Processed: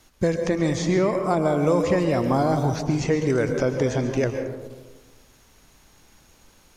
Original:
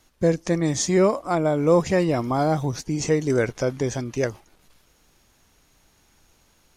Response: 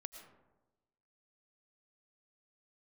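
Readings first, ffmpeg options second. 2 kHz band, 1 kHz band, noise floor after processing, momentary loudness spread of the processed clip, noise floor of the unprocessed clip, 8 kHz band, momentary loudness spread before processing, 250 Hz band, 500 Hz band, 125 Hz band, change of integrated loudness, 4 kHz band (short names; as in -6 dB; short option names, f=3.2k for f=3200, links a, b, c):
+0.5 dB, +0.5 dB, -56 dBFS, 5 LU, -61 dBFS, -7.0 dB, 8 LU, +0.5 dB, -0.5 dB, +1.0 dB, 0.0 dB, -2.0 dB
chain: -filter_complex "[0:a]acrossover=split=970|4100[a][b][c];[a]acompressor=threshold=-24dB:ratio=4[d];[b]acompressor=threshold=-37dB:ratio=4[e];[c]acompressor=threshold=-50dB:ratio=4[f];[d][e][f]amix=inputs=3:normalize=0[g];[1:a]atrim=start_sample=2205,asetrate=36162,aresample=44100[h];[g][h]afir=irnorm=-1:irlink=0,volume=8.5dB"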